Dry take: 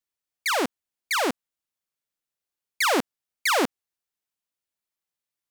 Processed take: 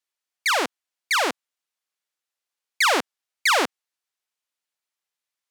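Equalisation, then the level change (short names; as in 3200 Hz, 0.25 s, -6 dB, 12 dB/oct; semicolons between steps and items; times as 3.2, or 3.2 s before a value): weighting filter A; +3.0 dB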